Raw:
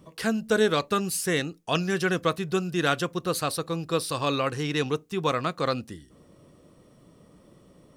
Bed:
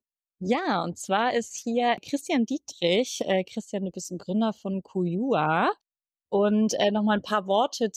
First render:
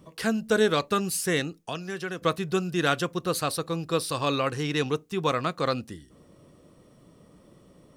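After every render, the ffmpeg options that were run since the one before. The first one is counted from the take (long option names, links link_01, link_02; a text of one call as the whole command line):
ffmpeg -i in.wav -filter_complex "[0:a]asettb=1/sr,asplit=3[link_01][link_02][link_03];[link_01]atrim=end=1.594[link_04];[link_02]atrim=start=1.59:end=2.22,asetpts=PTS-STARTPTS,afade=type=in:duration=0.004:curve=qsin,afade=type=out:start_time=0.626:duration=0.004:curve=qsin,acrossover=split=310|2100|4300[link_05][link_06][link_07][link_08];[link_05]acompressor=threshold=-42dB:ratio=3[link_09];[link_06]acompressor=threshold=-35dB:ratio=3[link_10];[link_07]acompressor=threshold=-46dB:ratio=3[link_11];[link_08]acompressor=threshold=-51dB:ratio=3[link_12];[link_09][link_10][link_11][link_12]amix=inputs=4:normalize=0[link_13];[link_03]atrim=start=2.216[link_14];[link_04][link_13]acrossfade=duration=0.004:curve1=hsin:curve2=qsin[link_15];[link_15][link_14]acrossfade=duration=0.004:curve1=qsin:curve2=hsin" out.wav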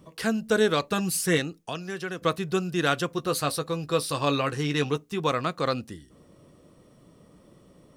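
ffmpeg -i in.wav -filter_complex "[0:a]asettb=1/sr,asplit=3[link_01][link_02][link_03];[link_01]atrim=end=0.924[link_04];[link_02]atrim=start=0.92:end=1.38,asetpts=PTS-STARTPTS,afade=type=in:duration=0.004:curve=qsin,afade=type=out:start_time=0.456:duration=0.004:curve=qsin,aecho=1:1:6.2:0.65,atrim=end_sample=20286[link_05];[link_03]atrim=start=1.376[link_06];[link_04][link_05]acrossfade=duration=0.004:curve1=hsin:curve2=qsin[link_07];[link_07][link_06]acrossfade=duration=0.004:curve1=qsin:curve2=hsin,asettb=1/sr,asplit=3[link_08][link_09][link_10];[link_08]atrim=end=3.104[link_11];[link_09]atrim=start=3.1:end=5.2,asetpts=PTS-STARTPTS,afade=type=in:duration=0.004:curve=qsin,afade=type=out:start_time=2.096:duration=0.004:curve=qsin,asplit=2[link_12][link_13];[link_13]adelay=14,volume=-8.5dB[link_14];[link_12][link_14]amix=inputs=2:normalize=0,atrim=end_sample=92610[link_15];[link_10]atrim=start=5.196[link_16];[link_11][link_15]acrossfade=duration=0.004:curve1=hsin:curve2=qsin[link_17];[link_17][link_16]acrossfade=duration=0.004:curve1=qsin:curve2=hsin" out.wav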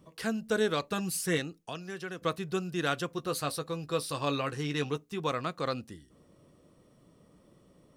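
ffmpeg -i in.wav -af "volume=-6dB" out.wav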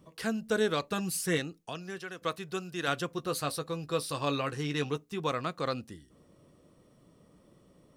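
ffmpeg -i in.wav -filter_complex "[0:a]asettb=1/sr,asplit=3[link_01][link_02][link_03];[link_01]atrim=end=1.984[link_04];[link_02]atrim=start=1.98:end=2.88,asetpts=PTS-STARTPTS,afade=type=in:duration=0.004:curve=qsin,afade=type=out:start_time=0.896:duration=0.004:curve=qsin,lowshelf=frequency=390:gain=-7.5[link_05];[link_03]atrim=start=2.876[link_06];[link_04][link_05]acrossfade=duration=0.004:curve1=hsin:curve2=qsin[link_07];[link_07][link_06]acrossfade=duration=0.004:curve1=qsin:curve2=hsin" out.wav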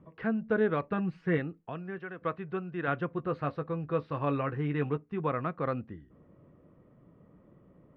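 ffmpeg -i in.wav -af "lowpass=frequency=2100:width=0.5412,lowpass=frequency=2100:width=1.3066,equalizer=frequency=120:width_type=o:width=2.3:gain=4" out.wav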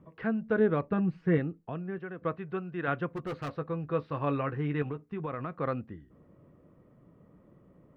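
ffmpeg -i in.wav -filter_complex "[0:a]asettb=1/sr,asplit=3[link_01][link_02][link_03];[link_01]atrim=end=0.594[link_04];[link_02]atrim=start=0.59:end=2.38,asetpts=PTS-STARTPTS,afade=type=in:duration=0.004:curve=qsin,afade=type=out:start_time=1.786:duration=0.004:curve=qsin,tiltshelf=frequency=740:gain=4[link_05];[link_03]atrim=start=2.376[link_06];[link_04][link_05]acrossfade=duration=0.004:curve1=hsin:curve2=qsin[link_07];[link_07][link_06]acrossfade=duration=0.004:curve1=qsin:curve2=hsin,asettb=1/sr,asplit=3[link_08][link_09][link_10];[link_08]atrim=end=3.104[link_11];[link_09]atrim=start=3.1:end=3.56,asetpts=PTS-STARTPTS,afade=type=in:duration=0.004:curve=qsin,afade=type=out:start_time=0.456:duration=0.004:curve=qsin,asoftclip=type=hard:threshold=-32dB[link_12];[link_10]atrim=start=3.556[link_13];[link_11][link_12]acrossfade=duration=0.004:curve1=hsin:curve2=qsin[link_14];[link_14][link_13]acrossfade=duration=0.004:curve1=qsin:curve2=hsin,asettb=1/sr,asplit=3[link_15][link_16][link_17];[link_15]atrim=end=4.824[link_18];[link_16]atrim=start=4.82:end=5.52,asetpts=PTS-STARTPTS,afade=type=in:duration=0.004:curve=qsin,afade=type=out:start_time=0.696:duration=0.004:curve=qsin,acompressor=threshold=-31dB:ratio=6:attack=3.2:release=140:knee=1:detection=peak[link_19];[link_17]atrim=start=5.516[link_20];[link_18][link_19]acrossfade=duration=0.004:curve1=hsin:curve2=qsin[link_21];[link_21][link_20]acrossfade=duration=0.004:curve1=qsin:curve2=hsin" out.wav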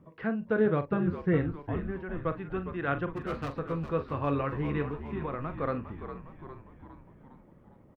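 ffmpeg -i in.wav -filter_complex "[0:a]asplit=2[link_01][link_02];[link_02]adelay=43,volume=-11.5dB[link_03];[link_01][link_03]amix=inputs=2:normalize=0,asplit=2[link_04][link_05];[link_05]asplit=7[link_06][link_07][link_08][link_09][link_10][link_11][link_12];[link_06]adelay=407,afreqshift=-71,volume=-10dB[link_13];[link_07]adelay=814,afreqshift=-142,volume=-14.7dB[link_14];[link_08]adelay=1221,afreqshift=-213,volume=-19.5dB[link_15];[link_09]adelay=1628,afreqshift=-284,volume=-24.2dB[link_16];[link_10]adelay=2035,afreqshift=-355,volume=-28.9dB[link_17];[link_11]adelay=2442,afreqshift=-426,volume=-33.7dB[link_18];[link_12]adelay=2849,afreqshift=-497,volume=-38.4dB[link_19];[link_13][link_14][link_15][link_16][link_17][link_18][link_19]amix=inputs=7:normalize=0[link_20];[link_04][link_20]amix=inputs=2:normalize=0" out.wav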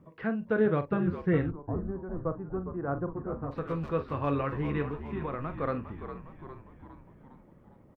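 ffmpeg -i in.wav -filter_complex "[0:a]asplit=3[link_01][link_02][link_03];[link_01]afade=type=out:start_time=1.5:duration=0.02[link_04];[link_02]lowpass=frequency=1100:width=0.5412,lowpass=frequency=1100:width=1.3066,afade=type=in:start_time=1.5:duration=0.02,afade=type=out:start_time=3.51:duration=0.02[link_05];[link_03]afade=type=in:start_time=3.51:duration=0.02[link_06];[link_04][link_05][link_06]amix=inputs=3:normalize=0" out.wav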